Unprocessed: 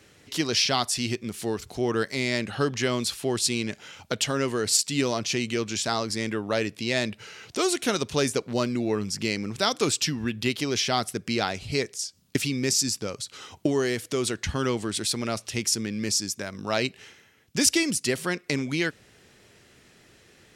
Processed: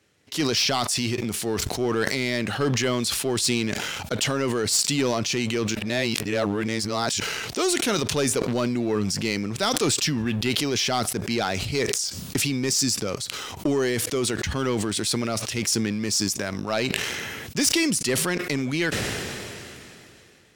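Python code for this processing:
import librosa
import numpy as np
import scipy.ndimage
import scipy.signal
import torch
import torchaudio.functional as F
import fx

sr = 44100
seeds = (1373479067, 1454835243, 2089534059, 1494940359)

y = fx.edit(x, sr, fx.reverse_span(start_s=5.75, length_s=1.45), tone=tone)
y = scipy.signal.sosfilt(scipy.signal.butter(2, 49.0, 'highpass', fs=sr, output='sos'), y)
y = fx.leveller(y, sr, passes=2)
y = fx.sustainer(y, sr, db_per_s=21.0)
y = F.gain(torch.from_numpy(y), -6.0).numpy()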